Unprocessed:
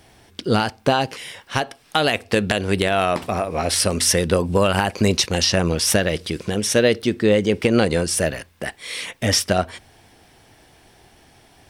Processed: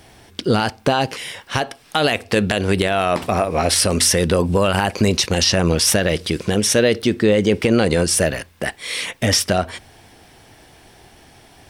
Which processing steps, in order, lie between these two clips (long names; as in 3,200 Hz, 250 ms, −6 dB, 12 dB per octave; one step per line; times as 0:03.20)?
brickwall limiter −10 dBFS, peak gain reduction 5 dB
level +4.5 dB